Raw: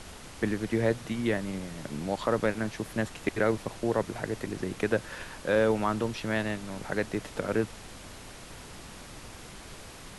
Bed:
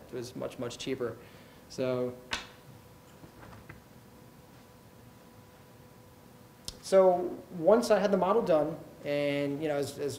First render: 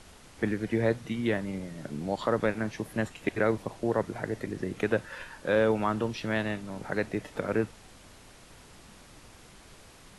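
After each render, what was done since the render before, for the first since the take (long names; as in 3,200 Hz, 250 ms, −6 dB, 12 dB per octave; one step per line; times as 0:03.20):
noise reduction from a noise print 7 dB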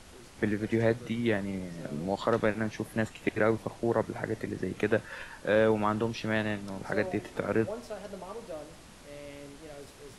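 mix in bed −15.5 dB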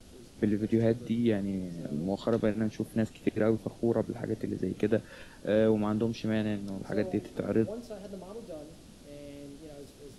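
noise gate with hold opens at −43 dBFS
octave-band graphic EQ 250/1,000/2,000/8,000 Hz +4/−9/−8/−4 dB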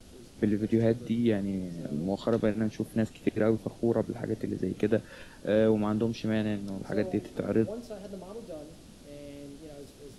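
level +1 dB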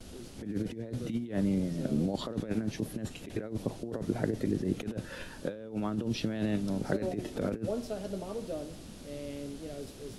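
compressor whose output falls as the input rises −31 dBFS, ratio −0.5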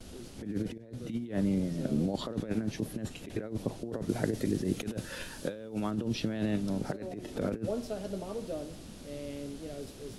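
0:00.78–0:01.44: fade in equal-power, from −14.5 dB
0:04.09–0:05.91: high-shelf EQ 3,500 Hz +8.5 dB
0:06.91–0:07.31: downward compressor, threshold −35 dBFS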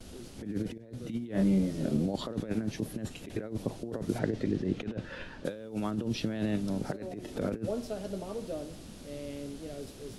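0:01.32–0:01.97: double-tracking delay 26 ms −2.5 dB
0:04.18–0:05.44: low-pass filter 4,200 Hz → 2,500 Hz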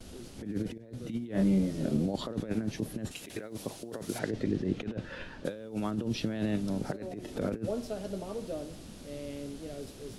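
0:03.11–0:04.31: spectral tilt +2.5 dB per octave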